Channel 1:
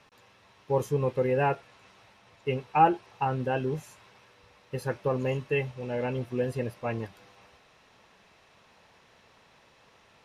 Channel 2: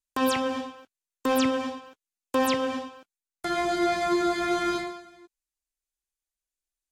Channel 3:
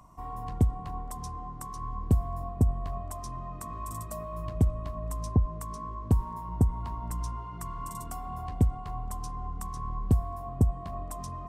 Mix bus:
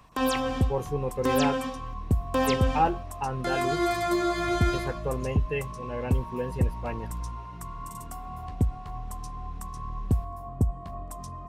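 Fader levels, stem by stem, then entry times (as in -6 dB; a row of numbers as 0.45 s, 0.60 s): -3.0 dB, -1.5 dB, -1.0 dB; 0.00 s, 0.00 s, 0.00 s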